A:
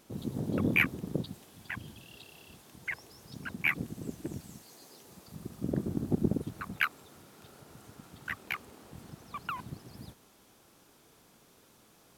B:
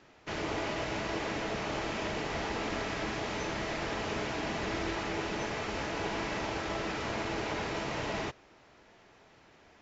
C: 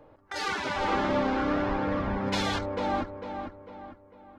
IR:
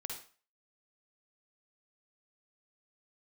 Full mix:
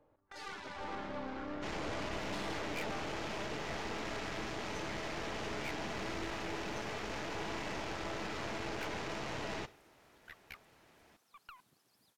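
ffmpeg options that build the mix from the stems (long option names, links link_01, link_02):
-filter_complex "[0:a]highpass=frequency=1200:poles=1,adelay=2000,volume=-10.5dB[link_01];[1:a]adelay=1350,volume=-2dB,asplit=2[link_02][link_03];[link_03]volume=-13dB[link_04];[2:a]volume=-11dB[link_05];[3:a]atrim=start_sample=2205[link_06];[link_04][link_06]afir=irnorm=-1:irlink=0[link_07];[link_01][link_02][link_05][link_07]amix=inputs=4:normalize=0,aeval=exprs='(tanh(56.2*val(0)+0.75)-tanh(0.75))/56.2':channel_layout=same"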